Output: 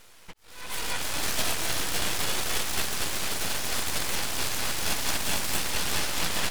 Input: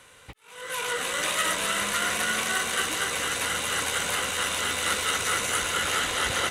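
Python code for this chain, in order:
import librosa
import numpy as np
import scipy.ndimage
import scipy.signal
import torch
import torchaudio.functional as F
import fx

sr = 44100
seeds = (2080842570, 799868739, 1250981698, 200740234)

y = np.abs(x)
y = y * librosa.db_to_amplitude(1.5)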